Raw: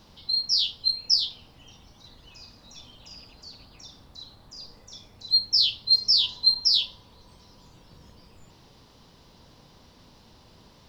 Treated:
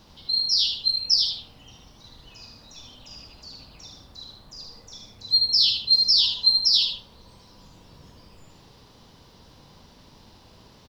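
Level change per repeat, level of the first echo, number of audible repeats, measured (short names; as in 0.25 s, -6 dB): -8.0 dB, -5.0 dB, 2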